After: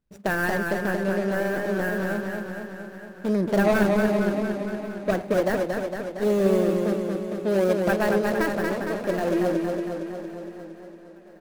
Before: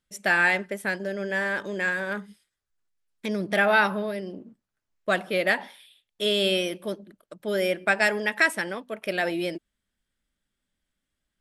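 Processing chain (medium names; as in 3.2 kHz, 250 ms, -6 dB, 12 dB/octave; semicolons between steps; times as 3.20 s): median filter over 41 samples; dynamic bell 3.1 kHz, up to -5 dB, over -46 dBFS, Q 0.7; feedback delay 1090 ms, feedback 46%, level -22.5 dB; modulated delay 230 ms, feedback 66%, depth 71 cents, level -4 dB; trim +6 dB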